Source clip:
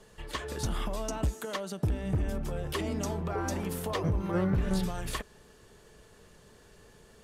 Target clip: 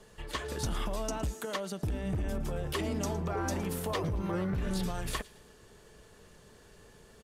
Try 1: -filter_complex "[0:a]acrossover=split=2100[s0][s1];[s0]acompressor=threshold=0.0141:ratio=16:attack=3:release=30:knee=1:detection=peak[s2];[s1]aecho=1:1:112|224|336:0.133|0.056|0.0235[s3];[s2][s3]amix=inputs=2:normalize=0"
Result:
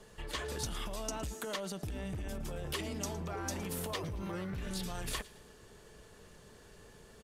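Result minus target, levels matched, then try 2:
compression: peak gain reduction +7.5 dB
-filter_complex "[0:a]acrossover=split=2100[s0][s1];[s0]acompressor=threshold=0.0355:ratio=16:attack=3:release=30:knee=1:detection=peak[s2];[s1]aecho=1:1:112|224|336:0.133|0.056|0.0235[s3];[s2][s3]amix=inputs=2:normalize=0"

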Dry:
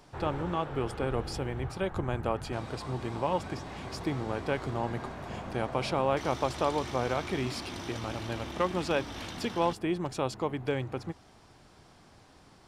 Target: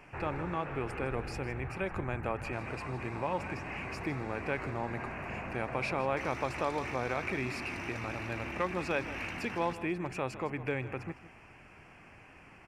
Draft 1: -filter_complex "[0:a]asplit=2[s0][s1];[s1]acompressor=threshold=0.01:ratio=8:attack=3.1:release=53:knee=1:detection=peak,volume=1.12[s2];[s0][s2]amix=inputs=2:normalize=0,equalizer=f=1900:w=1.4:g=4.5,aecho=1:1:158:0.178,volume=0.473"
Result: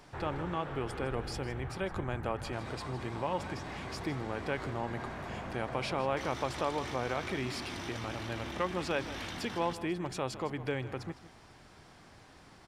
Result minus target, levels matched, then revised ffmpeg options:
2 kHz band -2.5 dB
-filter_complex "[0:a]asplit=2[s0][s1];[s1]acompressor=threshold=0.01:ratio=8:attack=3.1:release=53:knee=1:detection=peak,lowpass=f=2600:t=q:w=6.9,volume=1.12[s2];[s0][s2]amix=inputs=2:normalize=0,equalizer=f=1900:w=1.4:g=4.5,aecho=1:1:158:0.178,volume=0.473"

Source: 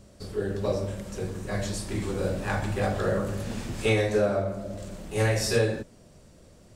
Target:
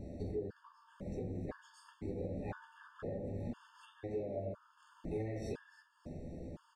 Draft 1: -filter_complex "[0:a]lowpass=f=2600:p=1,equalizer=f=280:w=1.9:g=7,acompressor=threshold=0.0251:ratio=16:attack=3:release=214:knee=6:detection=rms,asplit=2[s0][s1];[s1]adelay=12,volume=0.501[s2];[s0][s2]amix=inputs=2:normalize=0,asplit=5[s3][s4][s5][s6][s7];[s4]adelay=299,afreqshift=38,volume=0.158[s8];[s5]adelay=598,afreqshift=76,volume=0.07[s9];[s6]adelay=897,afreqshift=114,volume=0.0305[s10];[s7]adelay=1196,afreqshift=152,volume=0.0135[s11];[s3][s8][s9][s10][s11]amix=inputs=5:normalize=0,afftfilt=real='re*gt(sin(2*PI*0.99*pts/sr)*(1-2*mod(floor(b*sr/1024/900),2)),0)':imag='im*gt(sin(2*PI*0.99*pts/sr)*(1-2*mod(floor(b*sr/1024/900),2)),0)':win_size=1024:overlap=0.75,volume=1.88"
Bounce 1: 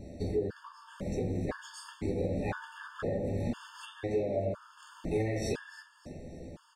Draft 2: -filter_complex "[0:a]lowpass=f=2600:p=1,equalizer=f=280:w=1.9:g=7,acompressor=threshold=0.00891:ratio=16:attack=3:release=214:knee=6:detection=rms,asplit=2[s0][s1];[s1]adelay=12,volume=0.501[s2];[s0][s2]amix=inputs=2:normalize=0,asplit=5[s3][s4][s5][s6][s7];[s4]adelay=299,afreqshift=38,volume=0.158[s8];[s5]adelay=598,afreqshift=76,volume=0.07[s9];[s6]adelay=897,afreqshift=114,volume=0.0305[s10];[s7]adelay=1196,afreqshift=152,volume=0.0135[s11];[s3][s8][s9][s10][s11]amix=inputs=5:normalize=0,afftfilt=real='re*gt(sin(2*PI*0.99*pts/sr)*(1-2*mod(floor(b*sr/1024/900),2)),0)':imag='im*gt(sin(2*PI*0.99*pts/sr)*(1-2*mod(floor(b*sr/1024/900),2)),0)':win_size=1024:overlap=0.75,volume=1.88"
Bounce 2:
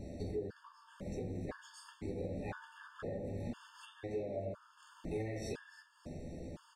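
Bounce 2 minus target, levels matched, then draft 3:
2 kHz band +4.5 dB
-filter_complex "[0:a]lowpass=f=900:p=1,equalizer=f=280:w=1.9:g=7,acompressor=threshold=0.00891:ratio=16:attack=3:release=214:knee=6:detection=rms,asplit=2[s0][s1];[s1]adelay=12,volume=0.501[s2];[s0][s2]amix=inputs=2:normalize=0,asplit=5[s3][s4][s5][s6][s7];[s4]adelay=299,afreqshift=38,volume=0.158[s8];[s5]adelay=598,afreqshift=76,volume=0.07[s9];[s6]adelay=897,afreqshift=114,volume=0.0305[s10];[s7]adelay=1196,afreqshift=152,volume=0.0135[s11];[s3][s8][s9][s10][s11]amix=inputs=5:normalize=0,afftfilt=real='re*gt(sin(2*PI*0.99*pts/sr)*(1-2*mod(floor(b*sr/1024/900),2)),0)':imag='im*gt(sin(2*PI*0.99*pts/sr)*(1-2*mod(floor(b*sr/1024/900),2)),0)':win_size=1024:overlap=0.75,volume=1.88"

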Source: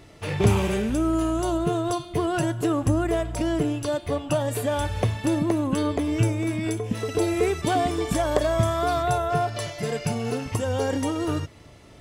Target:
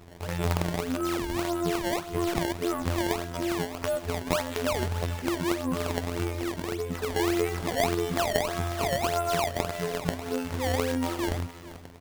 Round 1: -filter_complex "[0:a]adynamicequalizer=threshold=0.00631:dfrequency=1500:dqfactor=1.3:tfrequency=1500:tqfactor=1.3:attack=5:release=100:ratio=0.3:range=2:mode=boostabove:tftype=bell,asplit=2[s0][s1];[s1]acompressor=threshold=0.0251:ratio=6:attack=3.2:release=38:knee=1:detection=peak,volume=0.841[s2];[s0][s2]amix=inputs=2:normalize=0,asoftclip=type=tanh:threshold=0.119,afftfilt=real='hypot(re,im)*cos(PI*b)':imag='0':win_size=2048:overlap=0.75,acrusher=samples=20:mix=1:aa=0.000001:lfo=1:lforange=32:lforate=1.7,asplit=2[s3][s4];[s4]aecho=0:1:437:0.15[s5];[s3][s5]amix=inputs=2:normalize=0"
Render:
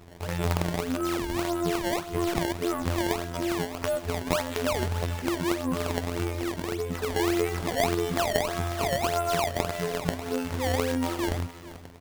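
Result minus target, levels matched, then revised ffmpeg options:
compression: peak gain reduction -6 dB
-filter_complex "[0:a]adynamicequalizer=threshold=0.00631:dfrequency=1500:dqfactor=1.3:tfrequency=1500:tqfactor=1.3:attack=5:release=100:ratio=0.3:range=2:mode=boostabove:tftype=bell,asplit=2[s0][s1];[s1]acompressor=threshold=0.0112:ratio=6:attack=3.2:release=38:knee=1:detection=peak,volume=0.841[s2];[s0][s2]amix=inputs=2:normalize=0,asoftclip=type=tanh:threshold=0.119,afftfilt=real='hypot(re,im)*cos(PI*b)':imag='0':win_size=2048:overlap=0.75,acrusher=samples=20:mix=1:aa=0.000001:lfo=1:lforange=32:lforate=1.7,asplit=2[s3][s4];[s4]aecho=0:1:437:0.15[s5];[s3][s5]amix=inputs=2:normalize=0"

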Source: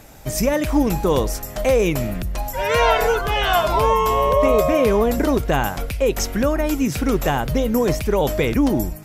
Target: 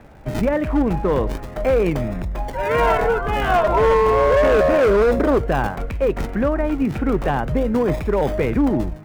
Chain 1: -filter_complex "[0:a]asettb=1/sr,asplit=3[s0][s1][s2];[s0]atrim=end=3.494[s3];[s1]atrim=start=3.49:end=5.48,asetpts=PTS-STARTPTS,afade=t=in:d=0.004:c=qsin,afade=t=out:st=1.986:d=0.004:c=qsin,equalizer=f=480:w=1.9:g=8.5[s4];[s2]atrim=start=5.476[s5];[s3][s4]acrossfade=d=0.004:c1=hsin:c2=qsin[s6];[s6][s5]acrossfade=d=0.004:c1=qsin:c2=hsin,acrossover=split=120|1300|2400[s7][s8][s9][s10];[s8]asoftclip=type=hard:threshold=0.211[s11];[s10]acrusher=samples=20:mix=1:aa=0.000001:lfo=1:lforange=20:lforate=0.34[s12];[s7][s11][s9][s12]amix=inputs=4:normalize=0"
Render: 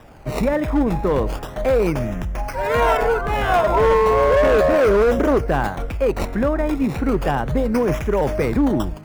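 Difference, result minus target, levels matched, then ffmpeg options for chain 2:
decimation with a swept rate: distortion -8 dB
-filter_complex "[0:a]asettb=1/sr,asplit=3[s0][s1][s2];[s0]atrim=end=3.494[s3];[s1]atrim=start=3.49:end=5.48,asetpts=PTS-STARTPTS,afade=t=in:d=0.004:c=qsin,afade=t=out:st=1.986:d=0.004:c=qsin,equalizer=f=480:w=1.9:g=8.5[s4];[s2]atrim=start=5.476[s5];[s3][s4]acrossfade=d=0.004:c1=hsin:c2=qsin[s6];[s6][s5]acrossfade=d=0.004:c1=qsin:c2=hsin,acrossover=split=120|1300|2400[s7][s8][s9][s10];[s8]asoftclip=type=hard:threshold=0.211[s11];[s10]acrusher=samples=58:mix=1:aa=0.000001:lfo=1:lforange=58:lforate=0.34[s12];[s7][s11][s9][s12]amix=inputs=4:normalize=0"

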